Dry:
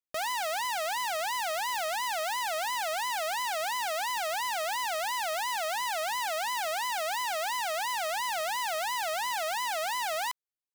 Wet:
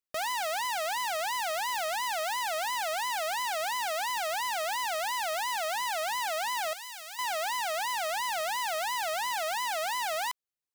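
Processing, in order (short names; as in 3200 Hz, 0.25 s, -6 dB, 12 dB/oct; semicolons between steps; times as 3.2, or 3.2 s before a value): 6.73–7.19 passive tone stack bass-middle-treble 5-5-5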